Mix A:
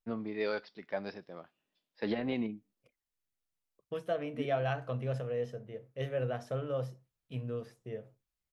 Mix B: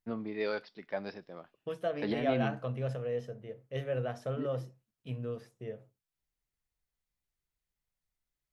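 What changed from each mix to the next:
second voice: entry −2.25 s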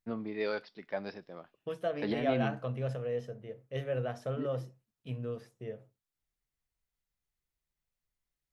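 nothing changed

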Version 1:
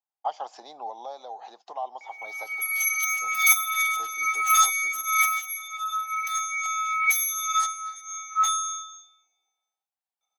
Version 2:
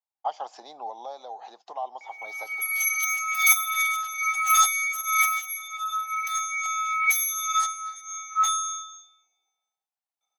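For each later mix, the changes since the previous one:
second voice: muted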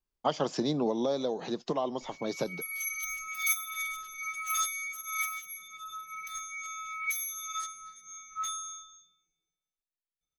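speech +10.5 dB
background −9.5 dB
master: remove high-pass with resonance 790 Hz, resonance Q 7.1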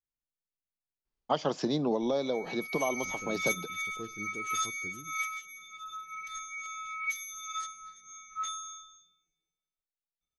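first voice: entry +1.05 s
second voice: unmuted
master: add low-pass filter 6,300 Hz 12 dB per octave

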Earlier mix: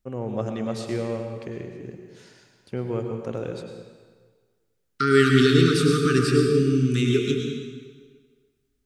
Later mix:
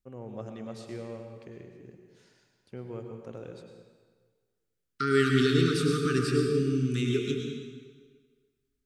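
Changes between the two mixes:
first voice −11.5 dB
second voice −6.5 dB

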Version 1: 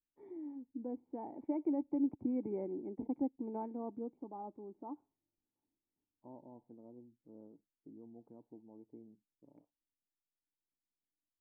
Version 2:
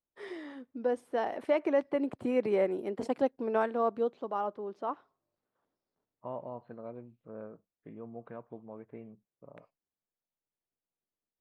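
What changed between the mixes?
first voice: add resonant band-pass 480 Hz, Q 0.67
master: remove formant resonators in series u

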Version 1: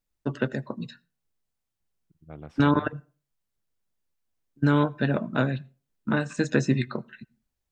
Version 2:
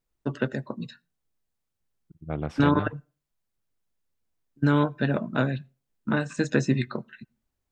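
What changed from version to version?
first voice: send −6.0 dB
second voice +11.5 dB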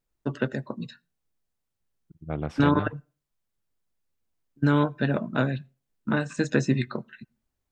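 nothing changed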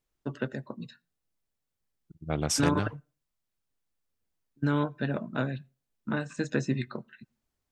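first voice −5.5 dB
second voice: remove high-frequency loss of the air 470 metres

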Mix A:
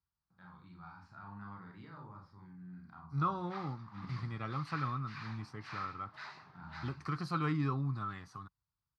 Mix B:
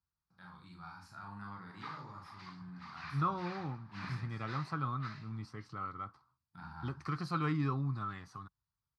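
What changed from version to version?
first voice: remove head-to-tape spacing loss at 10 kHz 23 dB
background: entry −1.70 s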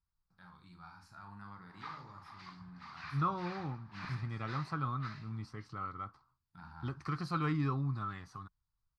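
first voice: send −6.5 dB
master: remove high-pass filter 79 Hz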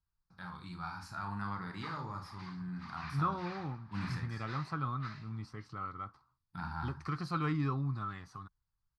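first voice +11.5 dB

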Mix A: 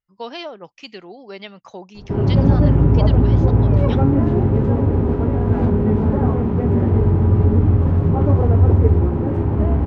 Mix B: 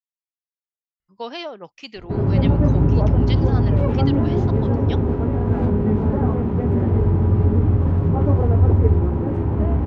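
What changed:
speech: entry +1.00 s
reverb: off

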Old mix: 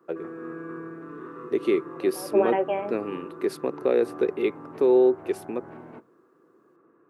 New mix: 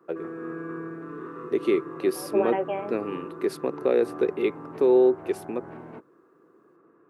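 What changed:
background +5.0 dB
reverb: off

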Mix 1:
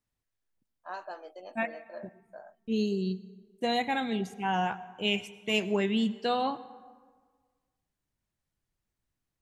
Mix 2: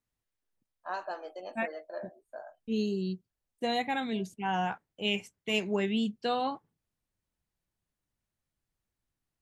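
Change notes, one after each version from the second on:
first voice +3.5 dB
reverb: off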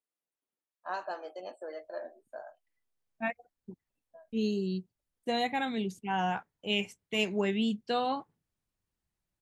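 second voice: entry +1.65 s

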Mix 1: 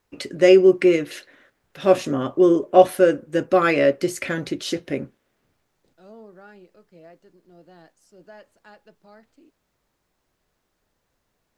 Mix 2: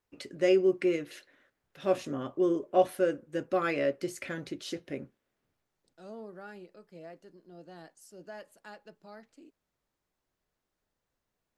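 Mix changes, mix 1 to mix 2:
first voice −11.5 dB
second voice: remove high-frequency loss of the air 54 metres

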